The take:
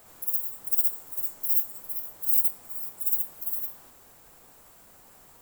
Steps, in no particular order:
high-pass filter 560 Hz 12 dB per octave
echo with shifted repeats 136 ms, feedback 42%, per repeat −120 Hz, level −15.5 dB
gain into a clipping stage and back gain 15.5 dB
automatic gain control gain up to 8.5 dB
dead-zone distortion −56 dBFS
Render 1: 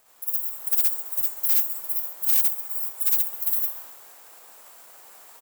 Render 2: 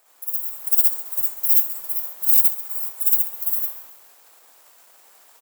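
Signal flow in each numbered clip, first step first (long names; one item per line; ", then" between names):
echo with shifted repeats, then automatic gain control, then gain into a clipping stage and back, then high-pass filter, then dead-zone distortion
dead-zone distortion, then high-pass filter, then gain into a clipping stage and back, then echo with shifted repeats, then automatic gain control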